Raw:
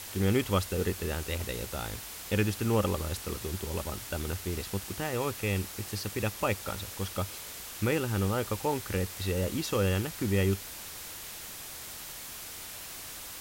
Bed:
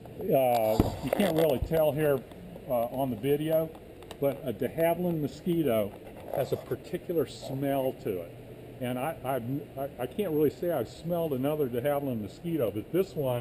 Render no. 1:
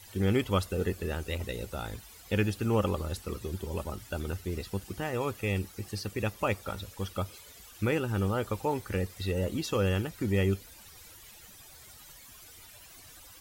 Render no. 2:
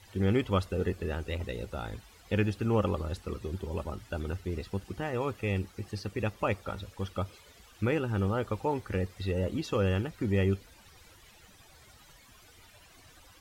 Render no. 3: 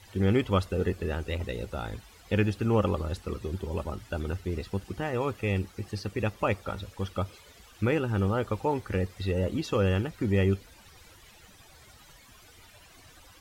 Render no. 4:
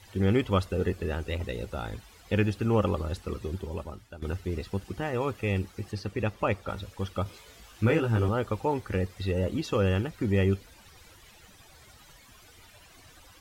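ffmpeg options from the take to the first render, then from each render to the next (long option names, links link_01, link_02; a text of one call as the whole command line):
ffmpeg -i in.wav -af "afftdn=noise_reduction=14:noise_floor=-43" out.wav
ffmpeg -i in.wav -af "aemphasis=mode=reproduction:type=50kf" out.wav
ffmpeg -i in.wav -af "volume=2.5dB" out.wav
ffmpeg -i in.wav -filter_complex "[0:a]asettb=1/sr,asplit=3[link_01][link_02][link_03];[link_01]atrim=end=5.924[link_04];[link_02]atrim=start=5.92:end=6.69,asetpts=PTS-STARTPTS,afade=type=in:duration=0.004:curve=qsin,afade=type=out:start_time=0.766:duration=0.004:curve=qsin,highshelf=frequency=5900:gain=-6[link_05];[link_03]atrim=start=6.686[link_06];[link_04][link_05]acrossfade=duration=0.004:curve1=hsin:curve2=qsin[link_07];[link_07][link_06]acrossfade=duration=0.004:curve1=qsin:curve2=hsin,asettb=1/sr,asplit=3[link_08][link_09][link_10];[link_08]atrim=end=7.244[link_11];[link_09]atrim=start=7.24:end=8.29,asetpts=PTS-STARTPTS,afade=type=in:duration=0.004:curve=qsin,afade=type=out:start_time=1.046:duration=0.004:curve=qsin,asplit=2[link_12][link_13];[link_13]adelay=18,volume=-3dB[link_14];[link_12][link_14]amix=inputs=2:normalize=0,atrim=end_sample=46305[link_15];[link_10]atrim=start=8.286[link_16];[link_11][link_15]acrossfade=duration=0.004:curve1=hsin:curve2=qsin[link_17];[link_17][link_16]acrossfade=duration=0.004:curve1=qsin:curve2=hsin,asplit=2[link_18][link_19];[link_18]atrim=end=4.22,asetpts=PTS-STARTPTS,afade=type=out:start_time=3.49:duration=0.73:silence=0.177828[link_20];[link_19]atrim=start=4.22,asetpts=PTS-STARTPTS,afade=type=in:duration=0.004:curve=hsin:silence=0.177828[link_21];[link_20][link_21]concat=n=2:v=0:a=1" out.wav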